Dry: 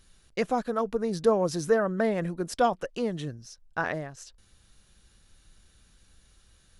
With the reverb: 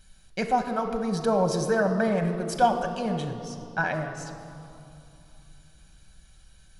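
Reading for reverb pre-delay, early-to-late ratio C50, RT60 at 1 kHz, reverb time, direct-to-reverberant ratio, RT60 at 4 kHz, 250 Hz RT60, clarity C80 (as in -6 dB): 5 ms, 7.5 dB, 3.0 s, 2.9 s, 4.5 dB, 2.0 s, 3.3 s, 8.5 dB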